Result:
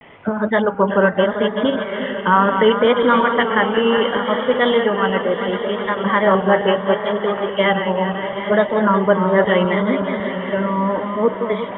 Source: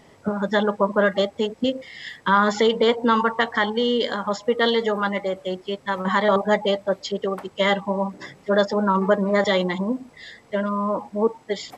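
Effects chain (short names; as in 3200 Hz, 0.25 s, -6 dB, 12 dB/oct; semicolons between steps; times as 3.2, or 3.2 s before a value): regenerating reverse delay 0.189 s, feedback 71%, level -7.5 dB; steep low-pass 3200 Hz 96 dB/oct; vibrato 0.72 Hz 81 cents; diffused feedback echo 0.845 s, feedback 49%, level -12 dB; mismatched tape noise reduction encoder only; gain +3.5 dB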